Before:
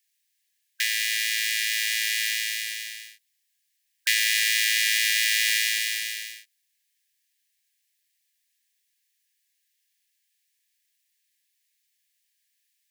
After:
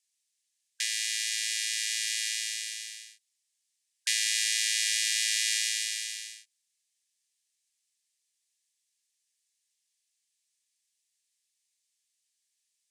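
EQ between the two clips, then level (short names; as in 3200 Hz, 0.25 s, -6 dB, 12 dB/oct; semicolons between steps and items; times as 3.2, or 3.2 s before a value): LPF 8800 Hz 24 dB/oct; differentiator; +1.0 dB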